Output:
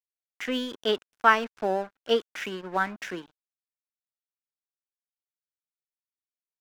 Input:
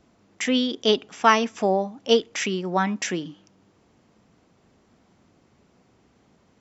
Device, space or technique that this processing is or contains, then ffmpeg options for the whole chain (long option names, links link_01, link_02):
pocket radio on a weak battery: -af "highpass=250,lowpass=3500,aeval=exprs='sgn(val(0))*max(abs(val(0))-0.0133,0)':channel_layout=same,equalizer=frequency=1500:width_type=o:width=0.33:gain=8.5,volume=-4dB"